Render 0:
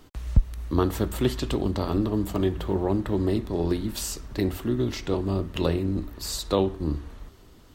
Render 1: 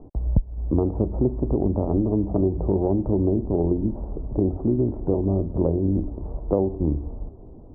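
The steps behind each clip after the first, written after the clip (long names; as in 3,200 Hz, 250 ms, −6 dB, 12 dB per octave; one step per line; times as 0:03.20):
Butterworth low-pass 800 Hz 36 dB per octave
downward compressor 3 to 1, threshold −28 dBFS, peak gain reduction 13 dB
level +9 dB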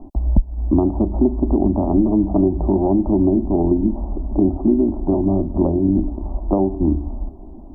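phaser with its sweep stopped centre 470 Hz, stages 6
level +8.5 dB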